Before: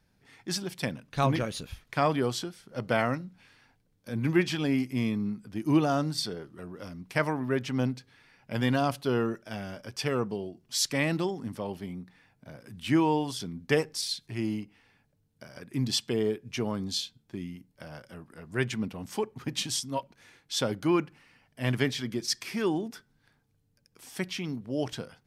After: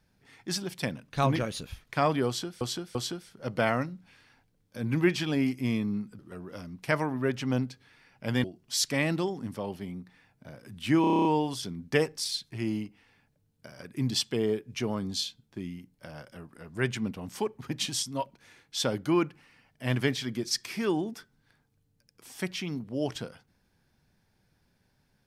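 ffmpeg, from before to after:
-filter_complex "[0:a]asplit=13[s0][s1][s2][s3][s4][s5][s6][s7][s8][s9][s10][s11][s12];[s0]atrim=end=2.612[s13];[s1]atrim=start=2.268:end=2.612[s14];[s2]atrim=start=2.268:end=5.512[s15];[s3]atrim=start=6.458:end=8.712[s16];[s4]atrim=start=10.448:end=13.052[s17];[s5]atrim=start=13.018:end=13.052[s18];[s6]atrim=start=13.018:end=13.052[s19];[s7]atrim=start=13.018:end=13.052[s20];[s8]atrim=start=13.018:end=13.052[s21];[s9]atrim=start=13.018:end=13.052[s22];[s10]atrim=start=13.018:end=13.052[s23];[s11]atrim=start=13.018:end=13.052[s24];[s12]atrim=start=13.018[s25];[s13][s14]acrossfade=d=0.004:c1=hsin:c2=hsin[s26];[s26][s15]acrossfade=d=0.004:c1=hsin:c2=hsin[s27];[s27][s16]acrossfade=d=0.004:c1=hsin:c2=hsin[s28];[s28][s17]acrossfade=d=0.004:c1=hsin:c2=hsin[s29];[s29][s18]acrossfade=d=0.004:c1=hsin:c2=hsin[s30];[s30][s19]acrossfade=d=0.004:c1=hsin:c2=hsin[s31];[s31][s20]acrossfade=d=0.004:c1=hsin:c2=hsin[s32];[s32][s21]acrossfade=d=0.004:c1=hsin:c2=hsin[s33];[s33][s22]acrossfade=d=0.004:c1=hsin:c2=hsin[s34];[s34][s23]acrossfade=d=0.004:c1=hsin:c2=hsin[s35];[s35][s24]acrossfade=d=0.004:c1=hsin:c2=hsin[s36];[s36][s25]acrossfade=d=0.004:c1=hsin:c2=hsin"

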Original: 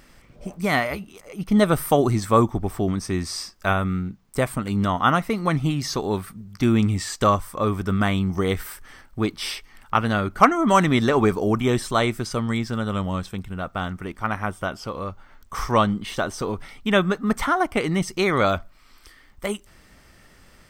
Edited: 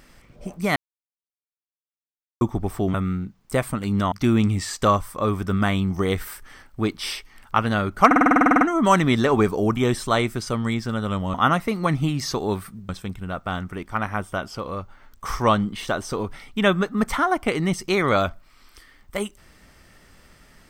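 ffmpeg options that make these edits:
-filter_complex "[0:a]asplit=18[s0][s1][s2][s3][s4][s5][s6][s7][s8][s9][s10][s11][s12][s13][s14][s15][s16][s17];[s0]atrim=end=0.76,asetpts=PTS-STARTPTS,afade=t=out:st=0.756:d=0.004:c=hsin[s18];[s1]atrim=start=0.76:end=2.41,asetpts=PTS-STARTPTS,volume=0[s19];[s2]atrim=start=2.41:end=2.942,asetpts=PTS-STARTPTS,afade=t=in:d=0.004:c=hsin[s20];[s3]atrim=start=3.778:end=4.962[s21];[s4]atrim=start=6.508:end=10.502[s22];[s5]atrim=start=10.448:end=10.502[s23];[s6]atrim=start=10.448:end=10.502[s24];[s7]atrim=start=10.448:end=10.502[s25];[s8]atrim=start=10.448:end=10.502[s26];[s9]atrim=start=10.448:end=10.502[s27];[s10]atrim=start=10.448:end=10.502[s28];[s11]atrim=start=10.448:end=10.502[s29];[s12]atrim=start=10.448:end=10.502[s30];[s13]atrim=start=10.448:end=10.502[s31];[s14]atrim=start=10.448:end=10.502[s32];[s15]atrim=start=10.448:end=13.182[s33];[s16]atrim=start=4.958:end=6.512[s34];[s17]atrim=start=13.178[s35];[s18][s19][s20]concat=n=3:v=0:a=1[s36];[s36][s21]acrossfade=d=0.004:c1=hsin:c2=hsin[s37];[s37][s22]acrossfade=d=0.004:c1=hsin:c2=hsin[s38];[s38][s23]acrossfade=d=0.004:c1=hsin:c2=hsin[s39];[s39][s24]acrossfade=d=0.004:c1=hsin:c2=hsin[s40];[s40][s25]acrossfade=d=0.004:c1=hsin:c2=hsin[s41];[s41][s26]acrossfade=d=0.004:c1=hsin:c2=hsin[s42];[s42][s27]acrossfade=d=0.004:c1=hsin:c2=hsin[s43];[s43][s28]acrossfade=d=0.004:c1=hsin:c2=hsin[s44];[s44][s29]acrossfade=d=0.004:c1=hsin:c2=hsin[s45];[s45][s30]acrossfade=d=0.004:c1=hsin:c2=hsin[s46];[s46][s31]acrossfade=d=0.004:c1=hsin:c2=hsin[s47];[s47][s32]acrossfade=d=0.004:c1=hsin:c2=hsin[s48];[s48][s33]acrossfade=d=0.004:c1=hsin:c2=hsin[s49];[s49][s34]acrossfade=d=0.004:c1=hsin:c2=hsin[s50];[s50][s35]acrossfade=d=0.004:c1=hsin:c2=hsin"

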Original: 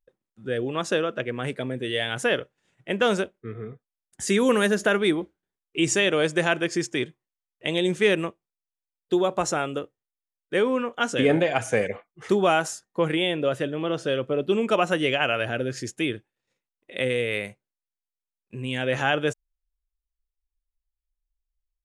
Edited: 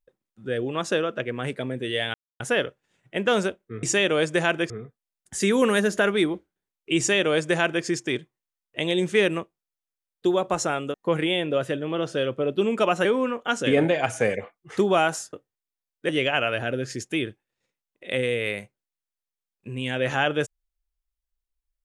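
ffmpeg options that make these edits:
-filter_complex "[0:a]asplit=8[s0][s1][s2][s3][s4][s5][s6][s7];[s0]atrim=end=2.14,asetpts=PTS-STARTPTS,afade=t=out:st=2.136:d=0.004:c=hsin,apad=pad_dur=0.26[s8];[s1]atrim=start=2.14:end=3.572,asetpts=PTS-STARTPTS,afade=t=in:d=0.004:c=hsin[s9];[s2]atrim=start=5.848:end=6.722[s10];[s3]atrim=start=3.568:end=9.812[s11];[s4]atrim=start=12.848:end=14.962[s12];[s5]atrim=start=10.568:end=12.852[s13];[s6]atrim=start=9.808:end=10.572[s14];[s7]atrim=start=14.958[s15];[s8][s9]concat=n=2:v=0:a=1[s16];[s16][s10]acrossfade=d=0.004:c1=hsin:c2=hsin[s17];[s17][s11]acrossfade=d=0.004:c1=hsin:c2=hsin[s18];[s18][s12]acrossfade=d=0.004:c1=hsin:c2=hsin[s19];[s19][s13]acrossfade=d=0.004:c1=hsin:c2=hsin[s20];[s20][s14]acrossfade=d=0.004:c1=hsin:c2=hsin[s21];[s21][s15]acrossfade=d=0.004:c1=hsin:c2=hsin"

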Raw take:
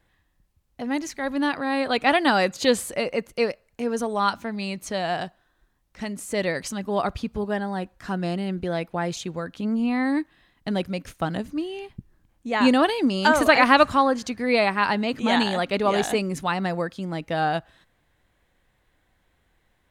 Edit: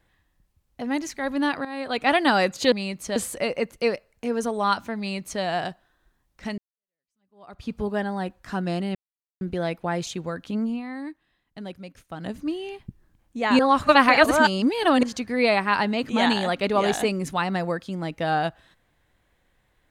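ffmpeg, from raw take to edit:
-filter_complex "[0:a]asplit=10[s0][s1][s2][s3][s4][s5][s6][s7][s8][s9];[s0]atrim=end=1.65,asetpts=PTS-STARTPTS,afade=t=out:st=1.646:d=0.004:c=hsin:silence=0.223872[s10];[s1]atrim=start=1.65:end=2.722,asetpts=PTS-STARTPTS,afade=t=in:d=0.52:silence=0.223872[s11];[s2]atrim=start=4.538:end=4.982[s12];[s3]atrim=start=2.718:end=6.14,asetpts=PTS-STARTPTS,afade=t=out:st=3.418:d=0.004:c=hsin[s13];[s4]atrim=start=6.14:end=8.51,asetpts=PTS-STARTPTS,afade=t=in:d=1.13:c=exp,afade=t=out:st=2.366:d=0.004:c=hsin,apad=pad_dur=0.46[s14];[s5]atrim=start=8.51:end=9.92,asetpts=PTS-STARTPTS,afade=t=in:d=0.004:c=hsin,afade=t=out:st=1.09:d=0.32:c=qsin:silence=0.281838[s15];[s6]atrim=start=9.92:end=11.26,asetpts=PTS-STARTPTS,volume=0.282[s16];[s7]atrim=start=11.26:end=12.692,asetpts=PTS-STARTPTS,afade=t=in:d=0.32:c=qsin:silence=0.281838[s17];[s8]atrim=start=12.688:end=14.132,asetpts=PTS-STARTPTS,areverse[s18];[s9]atrim=start=14.128[s19];[s10][s11]concat=n=2:v=0:a=1[s20];[s20][s12]acrossfade=d=0.004:c1=hsin:c2=hsin[s21];[s13][s14][s15][s16][s17]concat=n=5:v=0:a=1[s22];[s21][s22]acrossfade=d=0.004:c1=hsin:c2=hsin[s23];[s23][s18]acrossfade=d=0.004:c1=hsin:c2=hsin[s24];[s24][s19]acrossfade=d=0.004:c1=hsin:c2=hsin"

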